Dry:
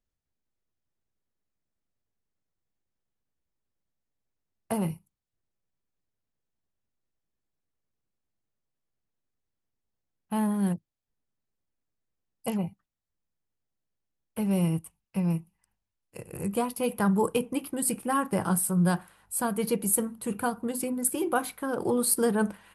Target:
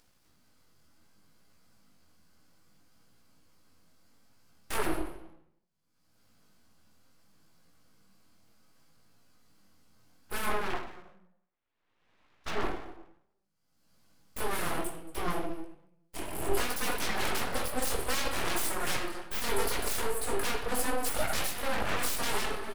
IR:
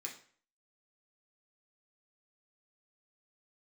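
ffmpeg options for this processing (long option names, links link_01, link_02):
-filter_complex "[0:a]asettb=1/sr,asplit=3[link_01][link_02][link_03];[link_01]atrim=end=10.494[link_04];[link_02]atrim=start=10.49:end=12.63,asetpts=PTS-STARTPTS,afade=type=in:duration=0.004:curve=qsin,afade=type=out:start_time=2.136:duration=0.004:curve=qsin,highpass=frequency=220:width=0.5412,highpass=frequency=220:width=1.3066,equalizer=frequency=230:width_type=q:width=4:gain=-8,equalizer=frequency=340:width_type=q:width=4:gain=-6,equalizer=frequency=590:width_type=q:width=4:gain=9,equalizer=frequency=1000:width_type=q:width=4:gain=4,equalizer=frequency=1800:width_type=q:width=4:gain=6,lowpass=frequency=2500:width=0.5412,lowpass=frequency=2500:width=1.3066[link_05];[link_03]atrim=start=12.626[link_06];[link_04][link_05]acrossfade=duration=0.004:curve1=hsin:curve2=qsin[link_07];[link_07][link_06]acrossfade=duration=0.004:curve1=qsin:curve2=hsin,agate=range=-33dB:threshold=-51dB:ratio=3:detection=peak,acompressor=mode=upward:threshold=-33dB:ratio=2.5,aecho=1:1:229:0.0891,aeval=exprs='0.0794*sin(PI/2*2.24*val(0)/0.0794)':channel_layout=same[link_08];[1:a]atrim=start_sample=2205,asetrate=27342,aresample=44100[link_09];[link_08][link_09]afir=irnorm=-1:irlink=0,flanger=delay=17:depth=6.8:speed=0.65,aeval=exprs='abs(val(0))':channel_layout=same"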